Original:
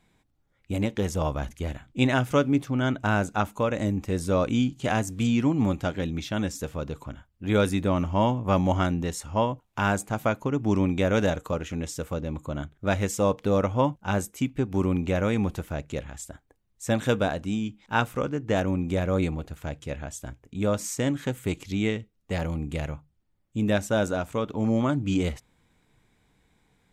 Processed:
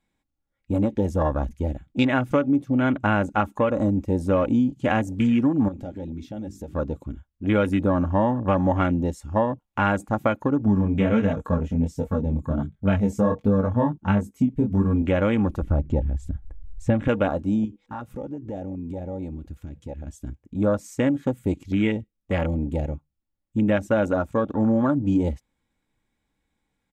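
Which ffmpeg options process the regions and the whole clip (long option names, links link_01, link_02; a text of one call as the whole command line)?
ffmpeg -i in.wav -filter_complex "[0:a]asettb=1/sr,asplit=3[link_01][link_02][link_03];[link_01]atrim=end=5.684[link_04];[link_02]atrim=start=5.68:end=6.74,asetpts=PTS-STARTPTS,afade=type=in:duration=0.004:curve=qsin,afade=type=out:start_time=1.056:duration=0.004:curve=qsin,bandreject=frequency=50:width_type=h:width=6,bandreject=frequency=100:width_type=h:width=6,bandreject=frequency=150:width_type=h:width=6,bandreject=frequency=200:width_type=h:width=6,bandreject=frequency=250:width_type=h:width=6,bandreject=frequency=300:width_type=h:width=6,bandreject=frequency=350:width_type=h:width=6,acompressor=threshold=-36dB:ratio=4:attack=3.2:release=140:knee=1:detection=peak[link_05];[link_03]atrim=start=6.736[link_06];[link_04][link_05]acrossfade=duration=0.004:curve1=hsin:curve2=qsin[link_07];[link_07][link_06]acrossfade=duration=0.004:curve1=qsin:curve2=hsin,asettb=1/sr,asplit=3[link_08][link_09][link_10];[link_08]atrim=end=10.654[link_11];[link_09]atrim=start=10.65:end=15.02,asetpts=PTS-STARTPTS,afade=type=in:duration=0.004:curve=qsin,afade=type=out:start_time=4.366:duration=0.004:curve=qsin,equalizer=frequency=110:width_type=o:width=1.1:gain=15,aecho=1:1:4.5:0.64,atrim=end_sample=192717,flanger=delay=19.5:depth=6.1:speed=1.4[link_12];[link_10]atrim=start=15.016[link_13];[link_11][link_12]acrossfade=duration=0.004:curve1=hsin:curve2=qsin[link_14];[link_14][link_13]acrossfade=duration=0.004:curve1=qsin:curve2=hsin,asettb=1/sr,asplit=3[link_15][link_16][link_17];[link_15]atrim=end=15.624[link_18];[link_16]atrim=start=15.62:end=17.08,asetpts=PTS-STARTPTS,afade=type=in:duration=0.004:curve=qsin,afade=type=out:start_time=1.456:duration=0.004:curve=qsin,aemphasis=mode=reproduction:type=bsi,acompressor=mode=upward:threshold=-28dB:ratio=2.5:attack=3.2:release=140:knee=2.83:detection=peak[link_19];[link_17]atrim=start=17.076[link_20];[link_18][link_19]acrossfade=duration=0.004:curve1=hsin:curve2=qsin[link_21];[link_21][link_20]acrossfade=duration=0.004:curve1=qsin:curve2=hsin,asettb=1/sr,asplit=3[link_22][link_23][link_24];[link_22]atrim=end=17.654[link_25];[link_23]atrim=start=17.65:end=20.07,asetpts=PTS-STARTPTS,afade=type=in:duration=0.004:curve=qsin,afade=type=out:start_time=2.416:duration=0.004:curve=qsin,acompressor=threshold=-36dB:ratio=4:attack=3.2:release=140:knee=1:detection=peak,aeval=exprs='val(0)+0.000562*sin(2*PI*490*n/s)':channel_layout=same[link_26];[link_24]atrim=start=20.066[link_27];[link_25][link_26]acrossfade=duration=0.004:curve1=hsin:curve2=qsin[link_28];[link_28][link_27]acrossfade=duration=0.004:curve1=qsin:curve2=hsin,afwtdn=0.0178,aecho=1:1:3.6:0.37,acompressor=threshold=-22dB:ratio=6,volume=5.5dB" out.wav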